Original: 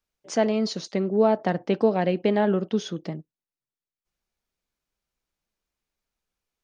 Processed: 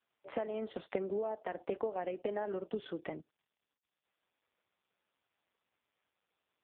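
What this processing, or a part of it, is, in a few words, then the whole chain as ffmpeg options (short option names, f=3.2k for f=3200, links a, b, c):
voicemail: -filter_complex "[0:a]asplit=3[a][b][c];[a]afade=t=out:st=1.67:d=0.02[d];[b]lowshelf=f=84:g=-3,afade=t=in:st=1.67:d=0.02,afade=t=out:st=3.04:d=0.02[e];[c]afade=t=in:st=3.04:d=0.02[f];[d][e][f]amix=inputs=3:normalize=0,highpass=390,lowpass=2.9k,acompressor=threshold=-35dB:ratio=10,volume=2.5dB" -ar 8000 -c:a libopencore_amrnb -b:a 4750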